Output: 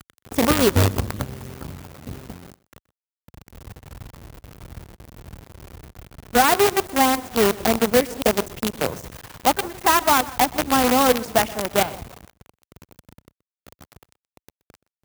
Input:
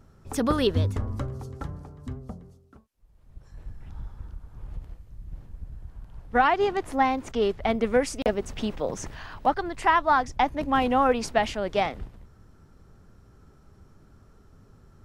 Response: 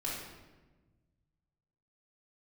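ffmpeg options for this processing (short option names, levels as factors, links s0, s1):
-filter_complex "[0:a]tiltshelf=f=1200:g=4.5,asplit=2[s0][s1];[s1]asplit=3[s2][s3][s4];[s2]adelay=161,afreqshift=-32,volume=0.141[s5];[s3]adelay=322,afreqshift=-64,volume=0.0479[s6];[s4]adelay=483,afreqshift=-96,volume=0.0164[s7];[s5][s6][s7]amix=inputs=3:normalize=0[s8];[s0][s8]amix=inputs=2:normalize=0,acrusher=bits=4:dc=4:mix=0:aa=0.000001,highpass=60,highshelf=f=11000:g=9.5,asplit=2[s9][s10];[s10]aecho=0:1:125:0.0891[s11];[s9][s11]amix=inputs=2:normalize=0,volume=1.19"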